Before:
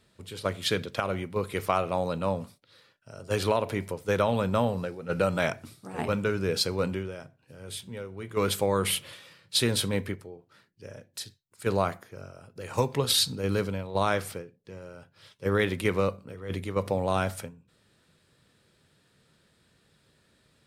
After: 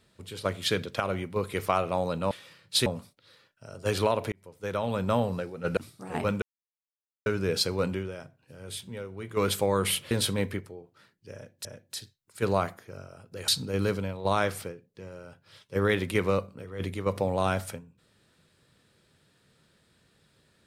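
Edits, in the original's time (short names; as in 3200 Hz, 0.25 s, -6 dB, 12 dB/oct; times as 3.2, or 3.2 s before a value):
3.77–4.63 fade in
5.22–5.61 cut
6.26 insert silence 0.84 s
9.11–9.66 move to 2.31
10.89–11.2 loop, 2 plays
12.72–13.18 cut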